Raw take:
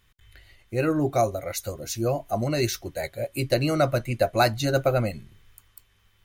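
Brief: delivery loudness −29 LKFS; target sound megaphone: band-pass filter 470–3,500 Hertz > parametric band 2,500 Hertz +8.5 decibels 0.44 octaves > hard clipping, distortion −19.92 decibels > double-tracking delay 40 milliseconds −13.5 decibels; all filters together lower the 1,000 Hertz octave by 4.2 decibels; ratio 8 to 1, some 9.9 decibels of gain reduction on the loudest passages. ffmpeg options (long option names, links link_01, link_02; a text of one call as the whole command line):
ffmpeg -i in.wav -filter_complex "[0:a]equalizer=frequency=1000:width_type=o:gain=-6.5,acompressor=threshold=-28dB:ratio=8,highpass=470,lowpass=3500,equalizer=frequency=2500:width_type=o:width=0.44:gain=8.5,asoftclip=type=hard:threshold=-26.5dB,asplit=2[link_01][link_02];[link_02]adelay=40,volume=-13.5dB[link_03];[link_01][link_03]amix=inputs=2:normalize=0,volume=8dB" out.wav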